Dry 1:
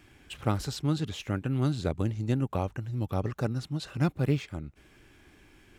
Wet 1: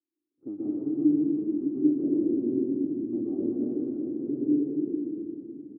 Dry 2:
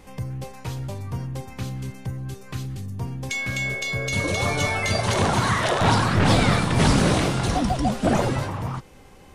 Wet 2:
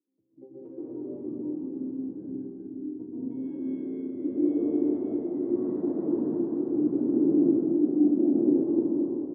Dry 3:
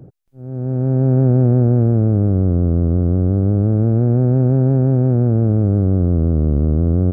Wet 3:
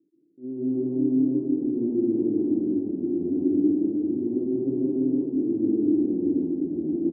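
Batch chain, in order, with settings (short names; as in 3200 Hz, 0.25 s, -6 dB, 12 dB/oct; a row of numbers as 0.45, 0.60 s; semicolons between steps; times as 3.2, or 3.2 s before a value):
spectral noise reduction 11 dB; in parallel at +0.5 dB: vocal rider within 3 dB; on the sum: limiter -7 dBFS; compressor 3:1, threshold -21 dBFS; hard clip -17.5 dBFS; step gate "...xxxxxxx" 121 bpm -24 dB; air absorption 170 m; frequency-shifting echo 0.358 s, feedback 50%, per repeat -91 Hz, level -5.5 dB; plate-style reverb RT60 3.3 s, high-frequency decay 0.5×, pre-delay 0.11 s, DRR -9 dB; careless resampling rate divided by 8×, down none, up hold; Butterworth band-pass 310 Hz, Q 3.1; normalise peaks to -12 dBFS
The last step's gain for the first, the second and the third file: 0.0, -0.5, +3.0 dB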